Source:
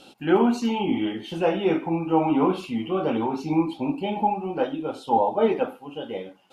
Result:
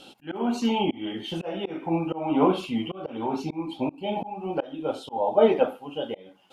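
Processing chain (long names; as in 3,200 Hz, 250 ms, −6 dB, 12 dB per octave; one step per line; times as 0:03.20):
parametric band 3,200 Hz +5 dB 0.26 octaves
volume swells 301 ms
dynamic equaliser 610 Hz, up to +7 dB, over −42 dBFS, Q 2.8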